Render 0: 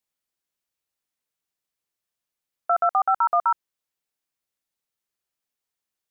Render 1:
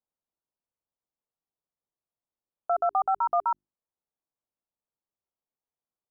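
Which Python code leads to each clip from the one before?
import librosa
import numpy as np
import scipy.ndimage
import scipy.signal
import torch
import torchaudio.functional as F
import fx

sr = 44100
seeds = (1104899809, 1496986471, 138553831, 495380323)

y = scipy.signal.sosfilt(scipy.signal.butter(4, 1100.0, 'lowpass', fs=sr, output='sos'), x)
y = fx.hum_notches(y, sr, base_hz=50, count=8)
y = y * librosa.db_to_amplitude(-2.0)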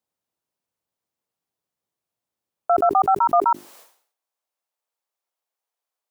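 y = fx.filter_sweep_highpass(x, sr, from_hz=86.0, to_hz=610.0, start_s=2.65, end_s=3.93, q=0.91)
y = fx.sustainer(y, sr, db_per_s=110.0)
y = y * librosa.db_to_amplitude(7.5)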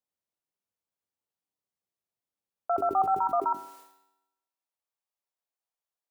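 y = fx.comb_fb(x, sr, f0_hz=96.0, decay_s=0.94, harmonics='all', damping=0.0, mix_pct=70)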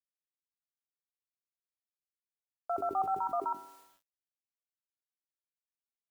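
y = fx.quant_dither(x, sr, seeds[0], bits=10, dither='none')
y = y * librosa.db_to_amplitude(-6.5)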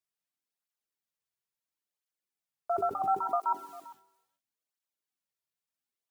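y = x + 10.0 ** (-19.5 / 20.0) * np.pad(x, (int(399 * sr / 1000.0), 0))[:len(x)]
y = fx.flanger_cancel(y, sr, hz=0.73, depth_ms=4.0)
y = y * librosa.db_to_amplitude(6.0)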